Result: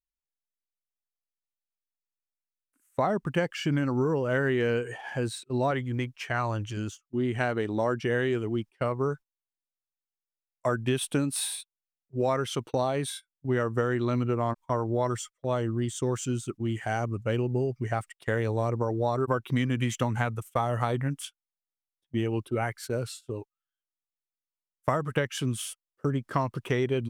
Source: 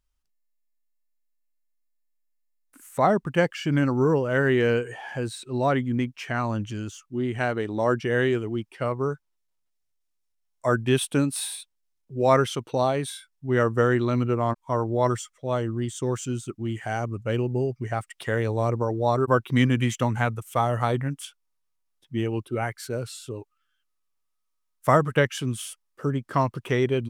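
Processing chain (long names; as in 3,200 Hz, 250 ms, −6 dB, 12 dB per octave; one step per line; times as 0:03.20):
noise gate −38 dBFS, range −21 dB
0:05.71–0:06.77: parametric band 220 Hz −10.5 dB 0.68 octaves
downward compressor 10 to 1, threshold −22 dBFS, peak gain reduction 10.5 dB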